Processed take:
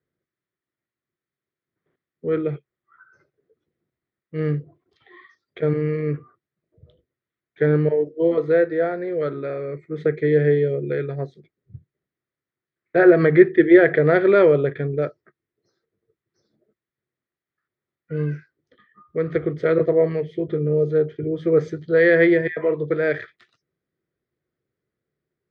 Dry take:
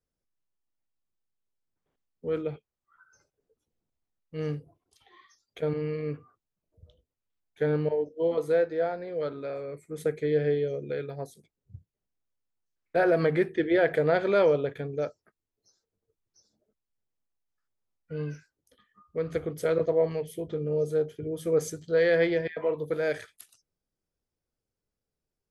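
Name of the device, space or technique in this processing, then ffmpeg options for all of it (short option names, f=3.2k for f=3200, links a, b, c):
guitar cabinet: -af "highpass=94,equalizer=f=140:t=q:w=4:g=7,equalizer=f=360:t=q:w=4:g=9,equalizer=f=860:t=q:w=4:g=-8,equalizer=f=1.3k:t=q:w=4:g=3,equalizer=f=1.9k:t=q:w=4:g=8,equalizer=f=2.8k:t=q:w=4:g=-7,lowpass=f=3.6k:w=0.5412,lowpass=f=3.6k:w=1.3066,volume=5.5dB"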